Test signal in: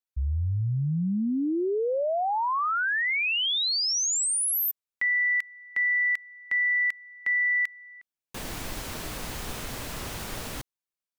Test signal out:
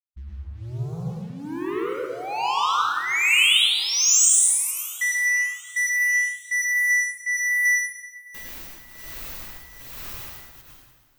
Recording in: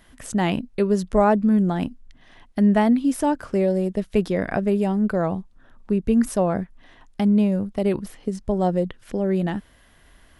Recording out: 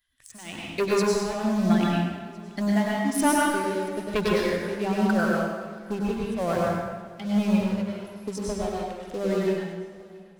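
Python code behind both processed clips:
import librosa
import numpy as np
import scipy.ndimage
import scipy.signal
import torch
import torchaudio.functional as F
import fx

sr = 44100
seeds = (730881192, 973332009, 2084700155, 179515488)

p1 = fx.bin_expand(x, sr, power=1.5)
p2 = p1 * (1.0 - 0.94 / 2.0 + 0.94 / 2.0 * np.cos(2.0 * np.pi * 1.2 * (np.arange(len(p1)) / sr)))
p3 = fx.high_shelf(p2, sr, hz=3100.0, db=-6.5)
p4 = fx.leveller(p3, sr, passes=2)
p5 = fx.tilt_shelf(p4, sr, db=-8.0, hz=1300.0)
p6 = fx.hum_notches(p5, sr, base_hz=50, count=4)
p7 = p6 + fx.echo_feedback(p6, sr, ms=679, feedback_pct=59, wet_db=-23.0, dry=0)
y = fx.rev_plate(p7, sr, seeds[0], rt60_s=1.4, hf_ratio=0.75, predelay_ms=85, drr_db=-4.5)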